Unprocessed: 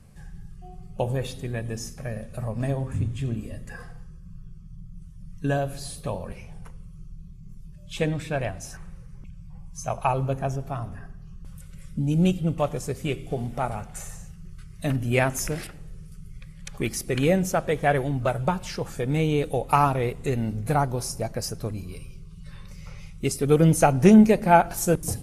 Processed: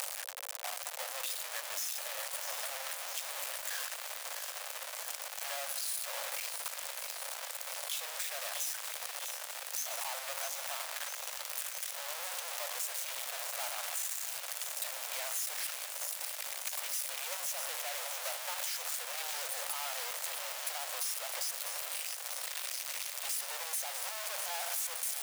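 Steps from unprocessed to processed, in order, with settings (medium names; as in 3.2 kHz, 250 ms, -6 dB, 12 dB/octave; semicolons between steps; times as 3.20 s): one-bit comparator; steep high-pass 520 Hz 72 dB/octave; tilt EQ +2.5 dB/octave; compression, threshold -24 dBFS, peak gain reduction 8 dB; on a send: feedback echo behind a high-pass 652 ms, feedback 75%, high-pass 1.6 kHz, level -7 dB; on the sum: endings held to a fixed fall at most 580 dB/s; trim -9 dB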